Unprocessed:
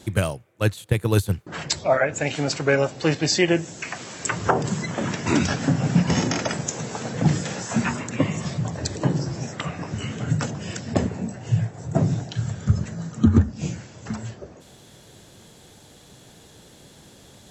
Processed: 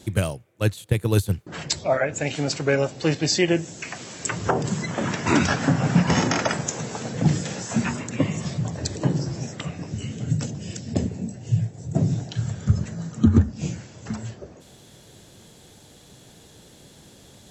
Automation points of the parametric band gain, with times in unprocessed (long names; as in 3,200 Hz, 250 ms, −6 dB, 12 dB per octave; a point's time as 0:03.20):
parametric band 1,200 Hz 1.9 octaves
0:04.51 −4 dB
0:05.39 +5.5 dB
0:06.45 +5.5 dB
0:07.11 −4 dB
0:09.36 −4 dB
0:10.01 −14 dB
0:11.88 −14 dB
0:12.34 −2.5 dB